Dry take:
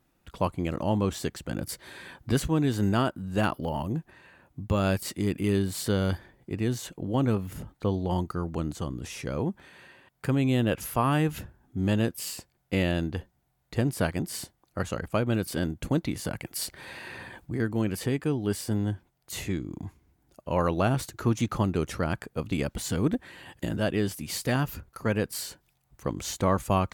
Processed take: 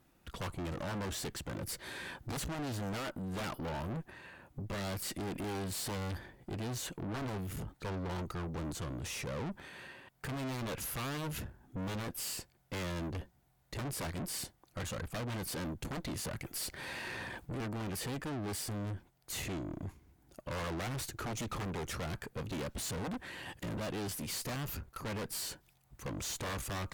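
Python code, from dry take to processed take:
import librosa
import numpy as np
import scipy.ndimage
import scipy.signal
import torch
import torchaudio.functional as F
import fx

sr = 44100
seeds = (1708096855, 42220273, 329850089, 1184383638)

y = 10.0 ** (-23.5 / 20.0) * (np.abs((x / 10.0 ** (-23.5 / 20.0) + 3.0) % 4.0 - 2.0) - 1.0)
y = fx.tube_stage(y, sr, drive_db=40.0, bias=0.45)
y = y * librosa.db_to_amplitude(3.5)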